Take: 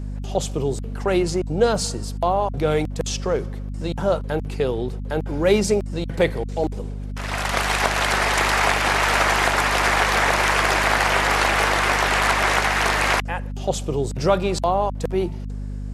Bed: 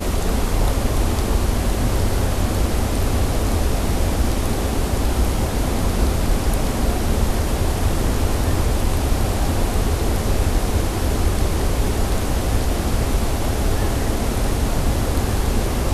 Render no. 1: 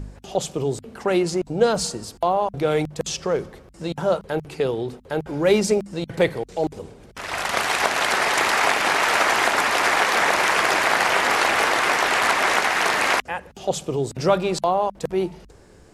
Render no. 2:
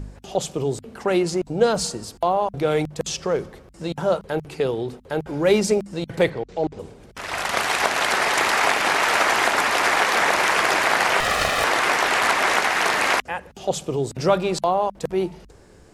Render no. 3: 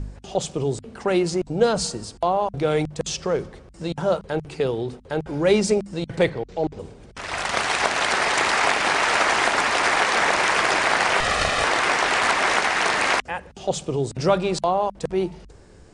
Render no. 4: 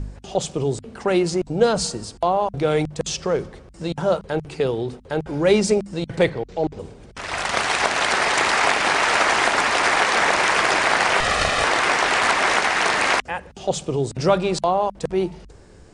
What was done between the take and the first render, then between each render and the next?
de-hum 50 Hz, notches 5
6.3–6.79 air absorption 120 m; 11.2–11.64 minimum comb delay 1.6 ms
elliptic low-pass 9500 Hz, stop band 40 dB; low shelf 130 Hz +5 dB
gain +1.5 dB; limiter -3 dBFS, peak gain reduction 1 dB

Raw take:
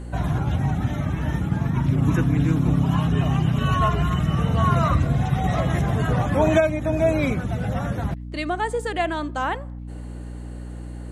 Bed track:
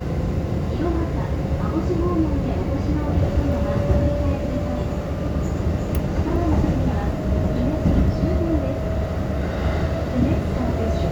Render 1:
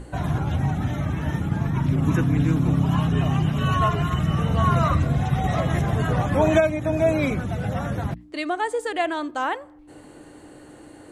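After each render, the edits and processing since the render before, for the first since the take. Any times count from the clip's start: notches 60/120/180/240 Hz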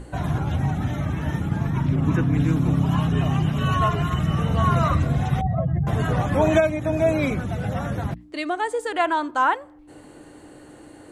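1.82–2.32 high shelf 9100 Hz -> 5200 Hz -11 dB; 5.41–5.87 spectral contrast raised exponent 2.2; 8.92–9.54 small resonant body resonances 990/1400 Hz, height 12 dB, ringing for 25 ms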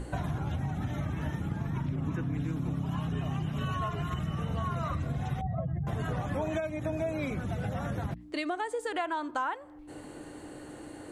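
compressor 6:1, threshold -30 dBFS, peak gain reduction 16 dB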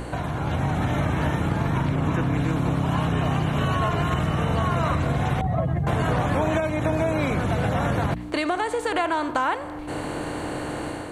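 per-bin compression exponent 0.6; AGC gain up to 6 dB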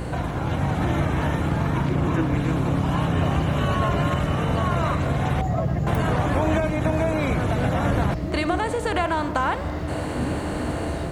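add bed track -8 dB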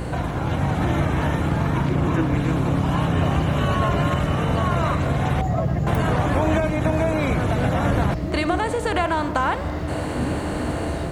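gain +1.5 dB

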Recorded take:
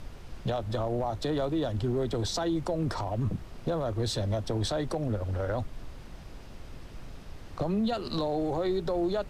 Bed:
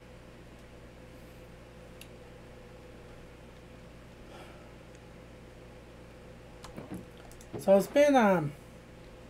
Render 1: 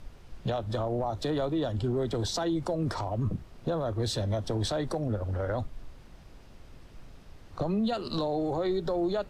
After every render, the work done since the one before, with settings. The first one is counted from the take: noise print and reduce 6 dB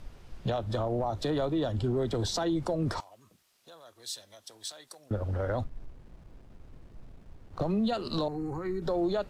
3–5.11 differentiator; 5.64–7.72 backlash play -51 dBFS; 8.28–8.82 fixed phaser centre 1500 Hz, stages 4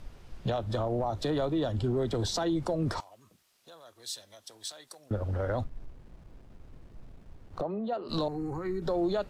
7.61–8.09 band-pass 620 Hz, Q 0.89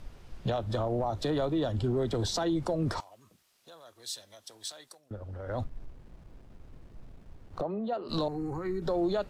4.83–5.63 dip -9.5 dB, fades 0.19 s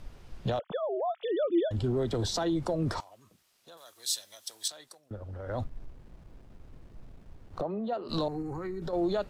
0.59–1.71 sine-wave speech; 3.77–4.68 tilt +3 dB/oct; 8.41–8.93 compressor 5:1, threshold -32 dBFS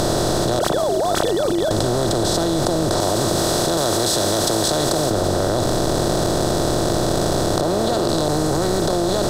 per-bin compression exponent 0.2; fast leveller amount 100%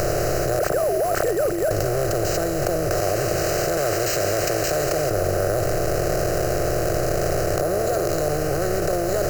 sample-rate reducer 11000 Hz, jitter 0%; fixed phaser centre 940 Hz, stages 6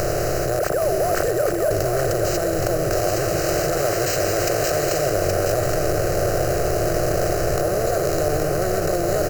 echo 0.821 s -5 dB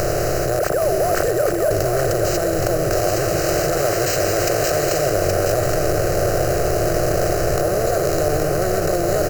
gain +2 dB

